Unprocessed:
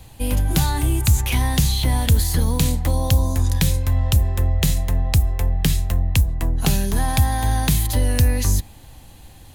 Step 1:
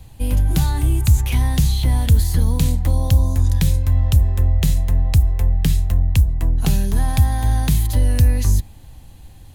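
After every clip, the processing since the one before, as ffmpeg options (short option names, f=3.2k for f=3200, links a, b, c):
-af "lowshelf=f=200:g=8.5,volume=-4.5dB"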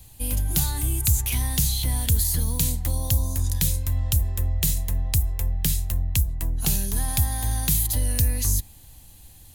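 -af "crystalizer=i=4:c=0,volume=-8.5dB"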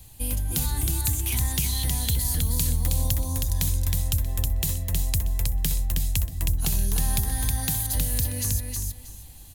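-filter_complex "[0:a]acompressor=threshold=-22dB:ratio=6,asplit=2[a][b];[b]aecho=0:1:317|634|951:0.668|0.134|0.0267[c];[a][c]amix=inputs=2:normalize=0"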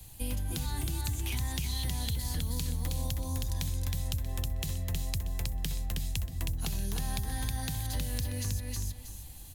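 -filter_complex "[0:a]acrossover=split=100|5900[a][b][c];[a]acompressor=threshold=-32dB:ratio=4[d];[b]acompressor=threshold=-34dB:ratio=4[e];[c]acompressor=threshold=-44dB:ratio=4[f];[d][e][f]amix=inputs=3:normalize=0,aeval=exprs='0.224*(cos(1*acos(clip(val(0)/0.224,-1,1)))-cos(1*PI/2))+0.00251*(cos(4*acos(clip(val(0)/0.224,-1,1)))-cos(4*PI/2))':c=same,volume=-1.5dB"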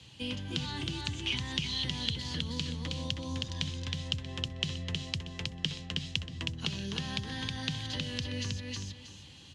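-af "highpass=f=100:w=0.5412,highpass=f=100:w=1.3066,equalizer=f=110:t=q:w=4:g=-5,equalizer=f=730:t=q:w=4:g=-10,equalizer=f=3k:t=q:w=4:g=10,lowpass=f=5.6k:w=0.5412,lowpass=f=5.6k:w=1.3066,volume=3dB"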